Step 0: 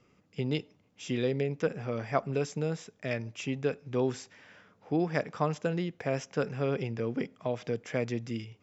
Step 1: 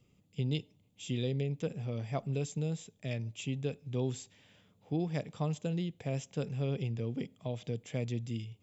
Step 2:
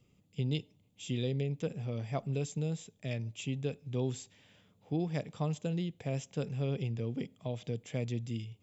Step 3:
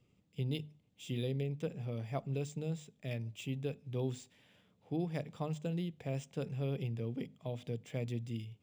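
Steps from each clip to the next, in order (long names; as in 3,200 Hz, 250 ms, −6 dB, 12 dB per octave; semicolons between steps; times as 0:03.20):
drawn EQ curve 130 Hz 0 dB, 240 Hz −6 dB, 370 Hz −9 dB, 820 Hz −11 dB, 1,500 Hz −19 dB, 3,500 Hz −1 dB, 5,500 Hz −10 dB, 8,000 Hz +3 dB; level +2 dB
no processing that can be heard
mains-hum notches 50/100/150/200/250 Hz; linearly interpolated sample-rate reduction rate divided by 3×; level −2.5 dB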